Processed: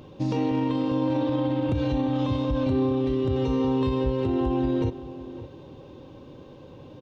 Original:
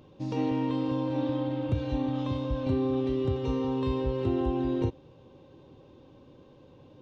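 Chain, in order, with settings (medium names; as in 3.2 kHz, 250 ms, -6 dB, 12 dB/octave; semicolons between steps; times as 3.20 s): peak limiter -26 dBFS, peak gain reduction 11 dB; echo from a far wall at 97 m, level -14 dB; trim +8.5 dB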